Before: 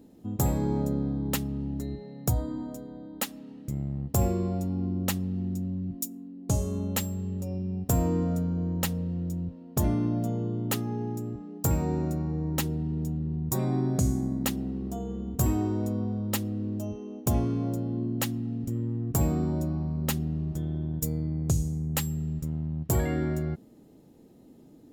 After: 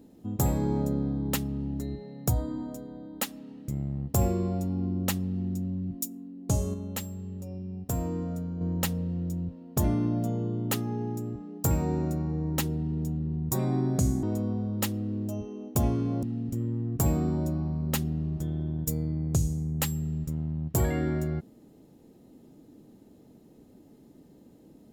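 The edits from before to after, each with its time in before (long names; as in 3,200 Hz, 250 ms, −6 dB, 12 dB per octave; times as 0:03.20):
0:06.74–0:08.61: clip gain −5.5 dB
0:14.23–0:15.74: remove
0:17.74–0:18.38: remove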